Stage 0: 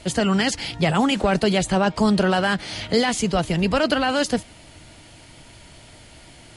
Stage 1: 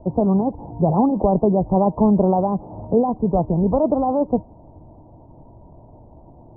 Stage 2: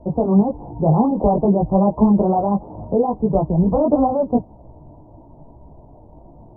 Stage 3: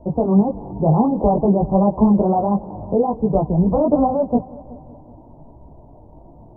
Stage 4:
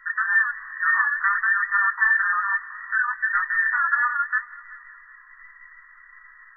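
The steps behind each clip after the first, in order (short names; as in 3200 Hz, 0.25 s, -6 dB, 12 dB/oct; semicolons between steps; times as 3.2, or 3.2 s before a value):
steep low-pass 1000 Hz 72 dB/oct; gain +3 dB
chorus voices 4, 0.94 Hz, delay 17 ms, depth 3.7 ms; gain +4 dB
multi-head echo 0.187 s, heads first and second, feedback 46%, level -23 dB
band inversion scrambler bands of 2000 Hz; flange 0.65 Hz, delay 5.5 ms, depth 8.4 ms, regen -66%; gain -1.5 dB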